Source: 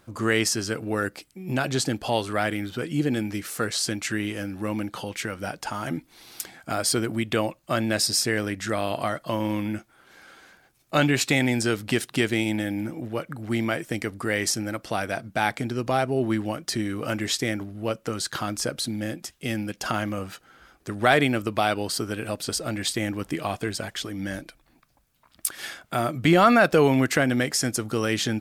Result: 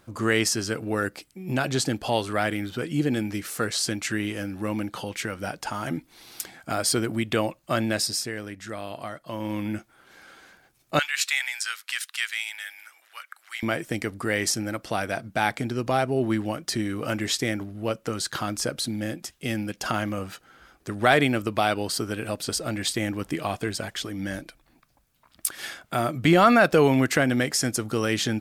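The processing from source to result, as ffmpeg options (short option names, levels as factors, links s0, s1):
-filter_complex "[0:a]asettb=1/sr,asplit=3[s0][s1][s2];[s0]atrim=end=10.994[s3];[s1]atrim=start=10.99:end=13.63,asetpts=PTS-STARTPTS,afade=t=in:d=0.004:c=qsin,afade=t=out:st=2.636:d=0.004:c=qsin,highpass=f=1300:w=0.5412,highpass=f=1300:w=1.3066[s4];[s2]atrim=start=13.626[s5];[s3][s4]acrossfade=d=0.004:c1=hsin:c2=qsin[s6];[s6][s5]acrossfade=d=0.004:c1=qsin:c2=hsin,asplit=3[s7][s8][s9];[s7]atrim=end=8.32,asetpts=PTS-STARTPTS,afade=t=out:st=7.83:d=0.49:silence=0.375837[s10];[s8]atrim=start=8.32:end=9.27,asetpts=PTS-STARTPTS,volume=0.376[s11];[s9]atrim=start=9.27,asetpts=PTS-STARTPTS,afade=t=in:d=0.49:silence=0.375837[s12];[s10][s11][s12]concat=n=3:v=0:a=1"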